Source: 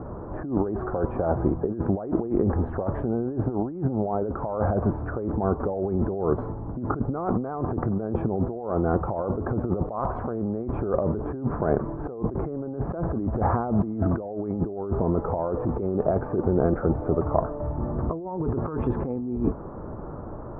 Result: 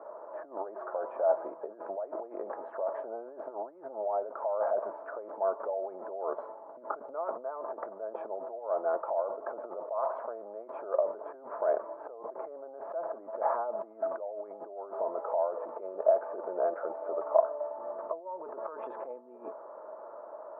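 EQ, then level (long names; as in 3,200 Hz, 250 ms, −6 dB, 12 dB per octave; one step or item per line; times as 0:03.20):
four-pole ladder high-pass 590 Hz, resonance 65%
Butterworth band-reject 750 Hz, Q 6.8
+2.5 dB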